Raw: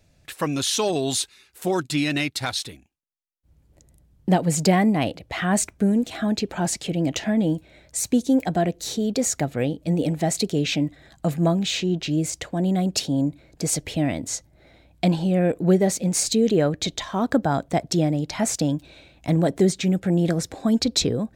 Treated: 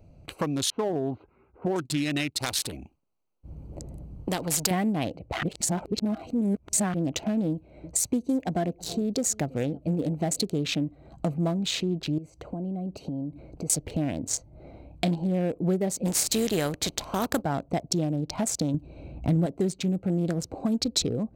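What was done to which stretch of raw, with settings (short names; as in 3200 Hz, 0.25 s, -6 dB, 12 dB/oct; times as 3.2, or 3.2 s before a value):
0.7–1.76 LPF 1700 Hz 24 dB/oct
2.4–4.71 spectral compressor 2:1
5.43–6.94 reverse
7.51–10.45 echo 0.327 s -24 dB
12.18–13.7 compressor 3:1, threshold -38 dBFS
14.28–15.22 doubler 29 ms -7 dB
16.05–17.41 spectral contrast lowered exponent 0.6
18.74–19.46 low shelf 330 Hz +9.5 dB
whole clip: Wiener smoothing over 25 samples; compressor 2.5:1, threshold -39 dBFS; high shelf 6700 Hz +6 dB; gain +8 dB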